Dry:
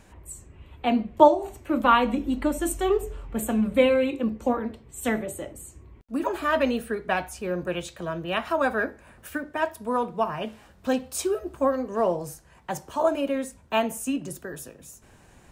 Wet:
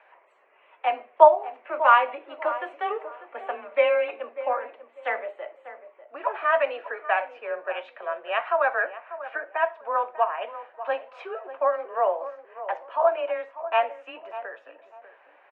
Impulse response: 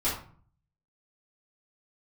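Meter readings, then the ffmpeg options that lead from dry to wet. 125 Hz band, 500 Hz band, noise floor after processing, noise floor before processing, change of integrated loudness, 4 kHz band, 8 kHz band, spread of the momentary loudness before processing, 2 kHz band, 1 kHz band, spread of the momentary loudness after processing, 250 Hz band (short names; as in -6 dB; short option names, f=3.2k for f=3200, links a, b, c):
under -40 dB, 0.0 dB, -59 dBFS, -54 dBFS, +0.5 dB, -5.0 dB, under -40 dB, 17 LU, +2.5 dB, +3.0 dB, 17 LU, -24.5 dB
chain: -filter_complex "[0:a]afreqshift=20,asuperpass=centerf=1200:order=8:qfactor=0.58,asplit=2[a][b];[b]adelay=594,lowpass=f=1.2k:p=1,volume=-12dB,asplit=2[c][d];[d]adelay=594,lowpass=f=1.2k:p=1,volume=0.28,asplit=2[e][f];[f]adelay=594,lowpass=f=1.2k:p=1,volume=0.28[g];[a][c][e][g]amix=inputs=4:normalize=0,volume=2.5dB"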